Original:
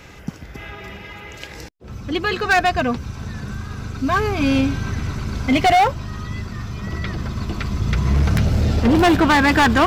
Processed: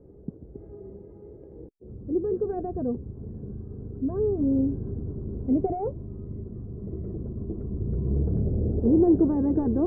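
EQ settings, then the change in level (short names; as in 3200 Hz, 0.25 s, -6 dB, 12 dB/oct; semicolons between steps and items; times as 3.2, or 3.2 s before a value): ladder low-pass 470 Hz, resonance 55%; +1.0 dB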